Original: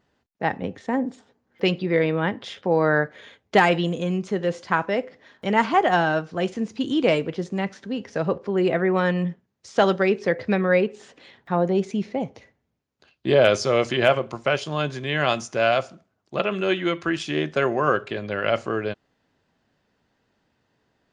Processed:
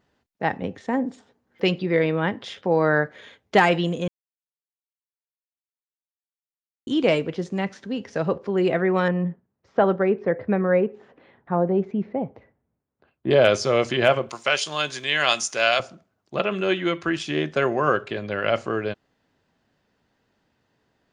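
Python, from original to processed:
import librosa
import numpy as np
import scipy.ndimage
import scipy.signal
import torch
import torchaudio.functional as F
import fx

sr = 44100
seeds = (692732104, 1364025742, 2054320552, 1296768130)

y = fx.lowpass(x, sr, hz=1400.0, slope=12, at=(9.08, 13.31))
y = fx.tilt_eq(y, sr, slope=4.0, at=(14.29, 15.8))
y = fx.edit(y, sr, fx.silence(start_s=4.08, length_s=2.79), tone=tone)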